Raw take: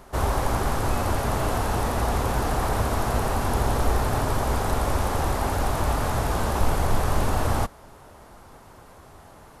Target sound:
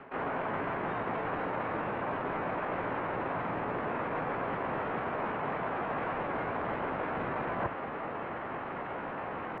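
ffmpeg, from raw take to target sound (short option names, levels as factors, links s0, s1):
-filter_complex "[0:a]highpass=f=240:t=q:w=0.5412,highpass=f=240:t=q:w=1.307,lowpass=f=2000:t=q:w=0.5176,lowpass=f=2000:t=q:w=0.7071,lowpass=f=2000:t=q:w=1.932,afreqshift=-120,acontrast=89,asplit=2[s0][s1];[s1]asetrate=66075,aresample=44100,atempo=0.66742,volume=1[s2];[s0][s2]amix=inputs=2:normalize=0,areverse,acompressor=threshold=0.02:ratio=10,areverse,volume=1.33"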